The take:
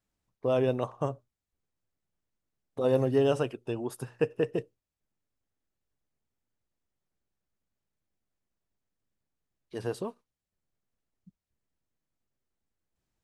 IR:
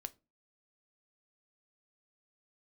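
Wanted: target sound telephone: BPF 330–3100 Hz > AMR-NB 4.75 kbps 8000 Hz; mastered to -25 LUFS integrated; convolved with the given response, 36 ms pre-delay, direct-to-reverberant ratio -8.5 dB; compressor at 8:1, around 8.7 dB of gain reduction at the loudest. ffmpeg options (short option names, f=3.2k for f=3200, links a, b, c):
-filter_complex "[0:a]acompressor=threshold=-29dB:ratio=8,asplit=2[a][b];[1:a]atrim=start_sample=2205,adelay=36[c];[b][c]afir=irnorm=-1:irlink=0,volume=12dB[d];[a][d]amix=inputs=2:normalize=0,highpass=330,lowpass=3.1k,volume=5.5dB" -ar 8000 -c:a libopencore_amrnb -b:a 4750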